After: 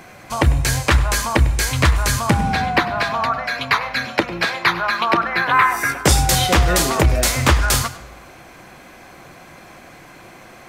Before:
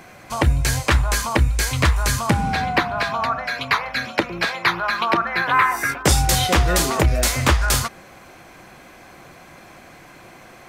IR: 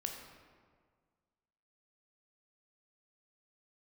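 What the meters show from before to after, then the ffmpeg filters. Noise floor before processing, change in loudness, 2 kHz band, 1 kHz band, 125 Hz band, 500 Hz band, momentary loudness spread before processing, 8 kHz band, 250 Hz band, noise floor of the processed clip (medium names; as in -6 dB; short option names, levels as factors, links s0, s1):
-45 dBFS, +2.0 dB, +2.0 dB, +2.0 dB, +2.0 dB, +2.0 dB, 6 LU, +2.0 dB, +2.0 dB, -43 dBFS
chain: -filter_complex "[0:a]asplit=2[s0][s1];[1:a]atrim=start_sample=2205,asetrate=66150,aresample=44100,adelay=99[s2];[s1][s2]afir=irnorm=-1:irlink=0,volume=0.266[s3];[s0][s3]amix=inputs=2:normalize=0,volume=1.26"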